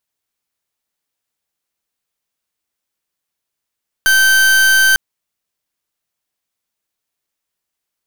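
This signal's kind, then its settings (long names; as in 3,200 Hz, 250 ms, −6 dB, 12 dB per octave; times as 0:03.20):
pulse wave 1,550 Hz, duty 40% −10.5 dBFS 0.90 s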